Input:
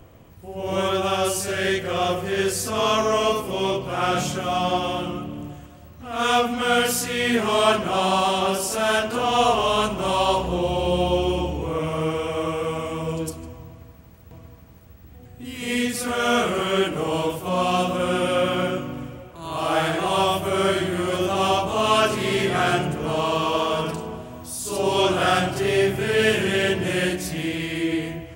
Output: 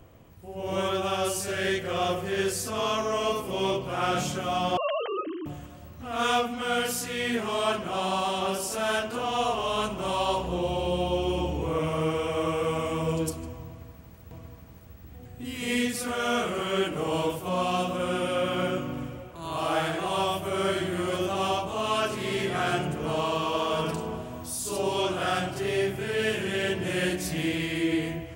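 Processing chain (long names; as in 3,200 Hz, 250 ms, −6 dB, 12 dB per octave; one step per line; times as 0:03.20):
0:04.77–0:05.46: three sine waves on the formant tracks
speech leveller within 5 dB 0.5 s
level −5.5 dB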